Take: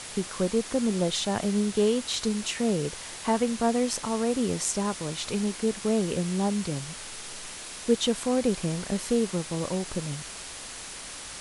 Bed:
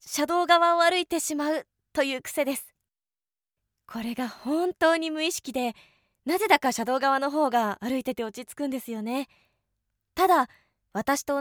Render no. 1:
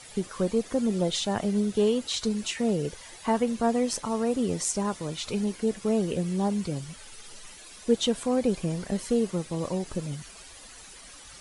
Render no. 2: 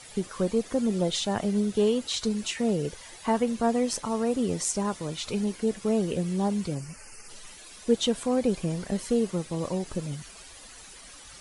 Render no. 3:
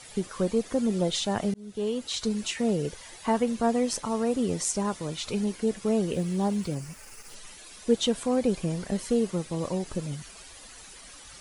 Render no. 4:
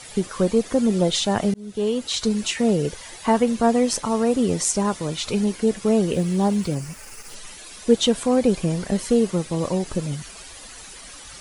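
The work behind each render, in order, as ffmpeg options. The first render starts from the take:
-af "afftdn=nr=12:nf=-40"
-filter_complex "[0:a]asplit=3[a][b][c];[a]afade=t=out:st=6.74:d=0.02[d];[b]asuperstop=centerf=3600:order=8:qfactor=2.2,afade=t=in:st=6.74:d=0.02,afade=t=out:st=7.28:d=0.02[e];[c]afade=t=in:st=7.28:d=0.02[f];[d][e][f]amix=inputs=3:normalize=0"
-filter_complex "[0:a]asettb=1/sr,asplit=3[a][b][c];[a]atrim=end=6.134[d];[b]atrim=start=6.13:end=7.35,asetpts=PTS-STARTPTS,afade=t=in:d=0.004:c=qsin,afade=t=out:st=1.216:d=0.004:c=qsin,aeval=exprs='val(0)*gte(abs(val(0)),0.00422)':c=same[e];[c]atrim=start=7.346[f];[d][e]acrossfade=d=0.004:c1=hsin:c2=qsin[g];[g][f]acrossfade=d=0.004:c1=qsin:c2=hsin,asplit=2[h][i];[h]atrim=end=1.54,asetpts=PTS-STARTPTS,afade=t=out:st=1.536:d=0.004:c=hsin[j];[i]atrim=start=1.54,asetpts=PTS-STARTPTS,afade=t=in:d=0.96:c=qsin[k];[j][k]concat=n=2:v=0:a=1"
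-af "volume=6.5dB"

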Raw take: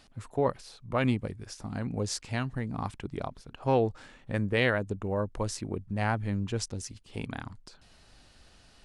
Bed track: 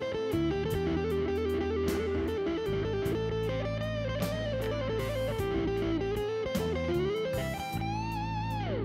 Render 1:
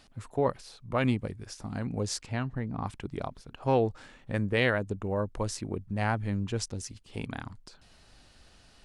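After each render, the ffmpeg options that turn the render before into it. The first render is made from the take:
-filter_complex "[0:a]asettb=1/sr,asplit=3[a][b][c];[a]atrim=end=2.264[d];[b]atrim=start=2.26:end=2.87,asetpts=PTS-STARTPTS,afade=t=in:d=0.004:c=qsin,afade=t=out:st=0.606:d=0.004:c=qsin,aemphasis=mode=reproduction:type=75kf[e];[c]atrim=start=2.866[f];[d][e]acrossfade=d=0.004:c1=hsin:c2=qsin[g];[g][f]acrossfade=d=0.004:c1=qsin:c2=hsin"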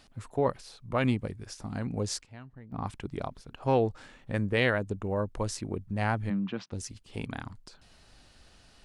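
-filter_complex "[0:a]asplit=3[a][b][c];[a]afade=t=out:st=6.29:d=0.02[d];[b]highpass=f=170:w=0.5412,highpass=f=170:w=1.3066,equalizer=f=190:t=q:w=4:g=6,equalizer=f=430:t=q:w=4:g=-8,equalizer=f=1.2k:t=q:w=4:g=4,lowpass=f=3.6k:w=0.5412,lowpass=f=3.6k:w=1.3066,afade=t=in:st=6.29:d=0.02,afade=t=out:st=6.71:d=0.02[e];[c]afade=t=in:st=6.71:d=0.02[f];[d][e][f]amix=inputs=3:normalize=0,asplit=3[g][h][i];[g]atrim=end=2.24,asetpts=PTS-STARTPTS,afade=t=out:st=2.03:d=0.21:c=log:silence=0.177828[j];[h]atrim=start=2.24:end=2.72,asetpts=PTS-STARTPTS,volume=-15dB[k];[i]atrim=start=2.72,asetpts=PTS-STARTPTS,afade=t=in:d=0.21:c=log:silence=0.177828[l];[j][k][l]concat=n=3:v=0:a=1"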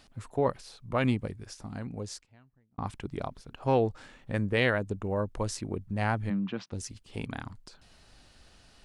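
-filter_complex "[0:a]asplit=2[a][b];[a]atrim=end=2.78,asetpts=PTS-STARTPTS,afade=t=out:st=1.22:d=1.56[c];[b]atrim=start=2.78,asetpts=PTS-STARTPTS,afade=t=in:d=0.004:c=hsin[d];[c][d]concat=n=2:v=0:a=1"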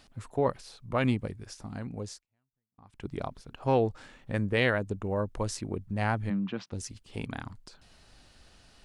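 -filter_complex "[0:a]asplit=3[a][b][c];[a]atrim=end=2.22,asetpts=PTS-STARTPTS,afade=t=out:st=2.08:d=0.14:silence=0.0841395[d];[b]atrim=start=2.22:end=2.92,asetpts=PTS-STARTPTS,volume=-21.5dB[e];[c]atrim=start=2.92,asetpts=PTS-STARTPTS,afade=t=in:d=0.14:silence=0.0841395[f];[d][e][f]concat=n=3:v=0:a=1"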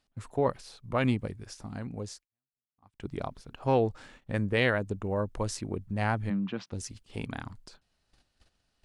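-af "agate=range=-18dB:threshold=-53dB:ratio=16:detection=peak"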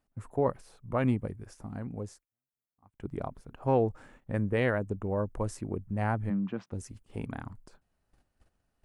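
-af "equalizer=f=4.2k:w=0.76:g=-14.5"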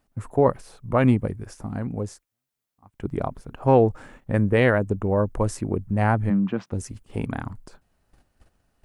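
-af "volume=9dB"

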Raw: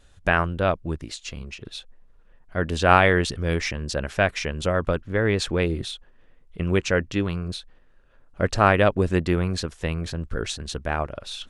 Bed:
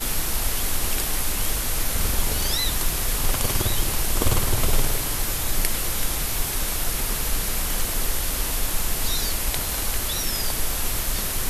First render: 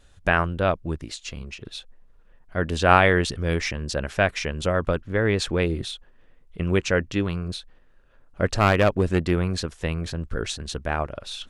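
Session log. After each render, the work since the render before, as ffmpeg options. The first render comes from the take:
-filter_complex "[0:a]asettb=1/sr,asplit=3[a][b][c];[a]atrim=end=8.554[d];[b]atrim=start=8.55:end=9.31,asetpts=PTS-STARTPTS,afade=t=in:d=0.004:c=qsin,afade=t=out:st=0.756:d=0.004:c=qsin,aeval=exprs='clip(val(0),-1,0.158)':c=same[e];[c]atrim=start=9.306[f];[d][e]acrossfade=d=0.004:c1=hsin:c2=qsin[g];[g][f]acrossfade=d=0.004:c1=qsin:c2=hsin"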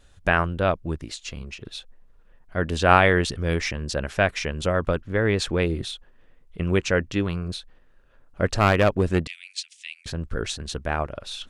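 -filter_complex "[0:a]asettb=1/sr,asplit=3[a][b][c];[a]atrim=end=9.274[d];[b]atrim=start=9.27:end=10.06,asetpts=PTS-STARTPTS,afade=t=in:d=0.004:c=qsin,afade=t=out:st=0.786:d=0.004:c=qsin,asuperpass=centerf=4900:order=12:qfactor=0.65[e];[c]atrim=start=10.056[f];[d][e]acrossfade=d=0.004:c1=hsin:c2=qsin[g];[g][f]acrossfade=d=0.004:c1=qsin:c2=hsin"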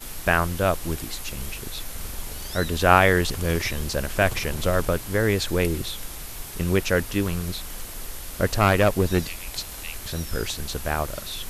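-filter_complex "[1:a]volume=-11dB[a];[0:a][a]amix=inputs=2:normalize=0"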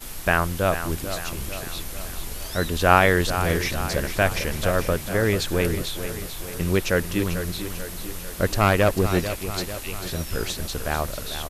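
-af "aecho=1:1:444|888|1332|1776|2220|2664:0.299|0.167|0.0936|0.0524|0.0294|0.0164"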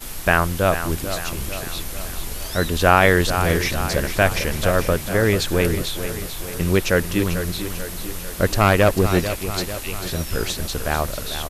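-af "volume=3.5dB,alimiter=limit=-1dB:level=0:latency=1"

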